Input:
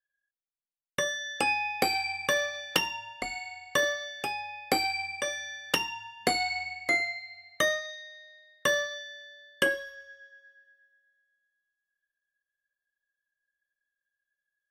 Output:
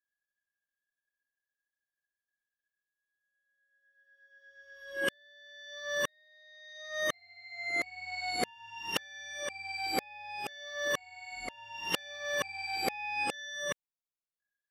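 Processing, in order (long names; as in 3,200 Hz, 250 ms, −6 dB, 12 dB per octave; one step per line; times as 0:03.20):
played backwards from end to start
level −6 dB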